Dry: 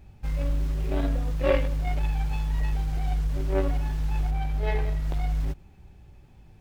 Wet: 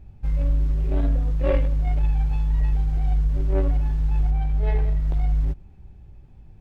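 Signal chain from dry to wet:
spectral tilt −2 dB per octave
level −3 dB

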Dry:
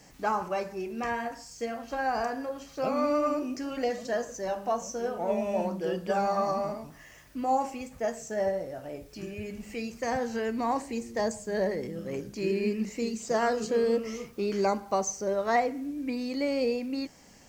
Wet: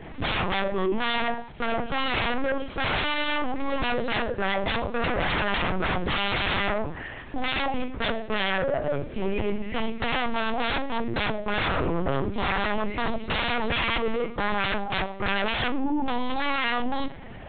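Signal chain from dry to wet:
low-pass filter 2,600 Hz 6 dB per octave
sine wavefolder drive 19 dB, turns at −15.5 dBFS
four-comb reverb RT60 0.42 s, combs from 33 ms, DRR 14 dB
linear-prediction vocoder at 8 kHz pitch kept
level −6.5 dB

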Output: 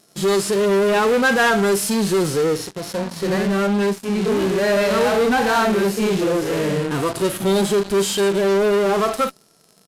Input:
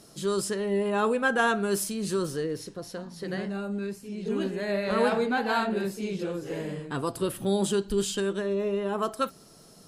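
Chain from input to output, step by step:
low-shelf EQ 160 Hz −10.5 dB
tape wow and flutter 25 cents
in parallel at −4 dB: fuzz pedal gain 44 dB, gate −46 dBFS
on the sum: downsampling to 32,000 Hz
harmonic and percussive parts rebalanced percussive −12 dB

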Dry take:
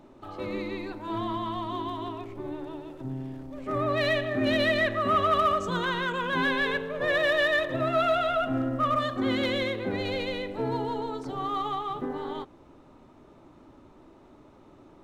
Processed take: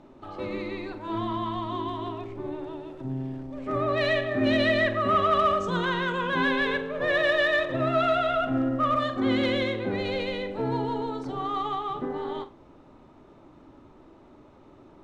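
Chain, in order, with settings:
high-frequency loss of the air 52 metres
flutter between parallel walls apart 7.8 metres, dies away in 0.23 s
level +1 dB

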